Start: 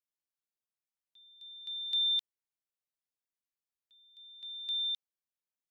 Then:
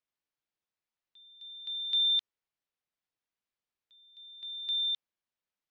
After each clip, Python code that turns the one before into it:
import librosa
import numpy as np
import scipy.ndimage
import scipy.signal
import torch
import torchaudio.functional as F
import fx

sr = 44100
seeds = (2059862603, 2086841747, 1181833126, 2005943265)

y = scipy.signal.sosfilt(scipy.signal.butter(2, 4200.0, 'lowpass', fs=sr, output='sos'), x)
y = F.gain(torch.from_numpy(y), 4.5).numpy()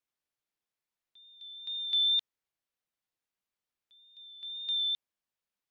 y = fx.wow_flutter(x, sr, seeds[0], rate_hz=2.1, depth_cents=23.0)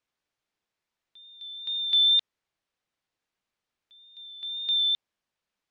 y = fx.air_absorb(x, sr, metres=69.0)
y = F.gain(torch.from_numpy(y), 8.0).numpy()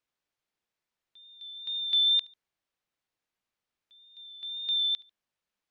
y = fx.echo_feedback(x, sr, ms=72, feedback_pct=35, wet_db=-24.0)
y = F.gain(torch.from_numpy(y), -3.0).numpy()